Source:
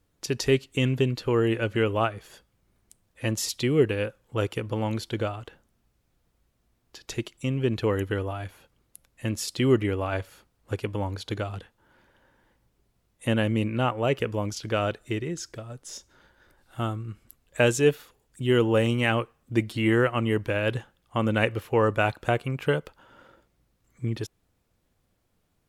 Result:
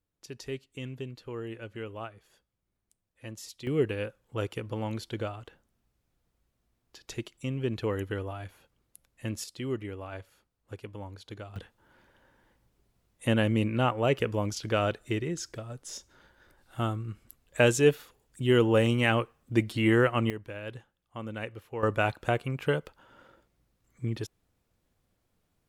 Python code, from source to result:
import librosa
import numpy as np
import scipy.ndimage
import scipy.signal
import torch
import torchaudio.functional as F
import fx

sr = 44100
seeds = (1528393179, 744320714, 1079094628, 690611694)

y = fx.gain(x, sr, db=fx.steps((0.0, -15.0), (3.67, -5.5), (9.44, -12.0), (11.56, -1.0), (20.3, -13.5), (21.83, -3.0)))